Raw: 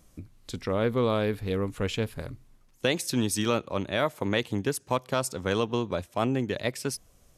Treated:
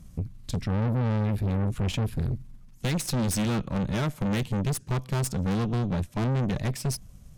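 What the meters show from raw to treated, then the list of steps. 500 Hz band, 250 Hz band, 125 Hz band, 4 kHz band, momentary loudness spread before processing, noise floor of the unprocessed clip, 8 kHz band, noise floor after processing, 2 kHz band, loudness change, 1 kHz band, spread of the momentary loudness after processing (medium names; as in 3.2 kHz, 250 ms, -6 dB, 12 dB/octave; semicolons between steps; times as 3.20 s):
-6.5 dB, +2.0 dB, +8.0 dB, -4.0 dB, 9 LU, -60 dBFS, 0.0 dB, -49 dBFS, -4.5 dB, +0.5 dB, -3.5 dB, 7 LU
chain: resonant low shelf 260 Hz +12 dB, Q 1.5; valve stage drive 28 dB, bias 0.7; trim +4.5 dB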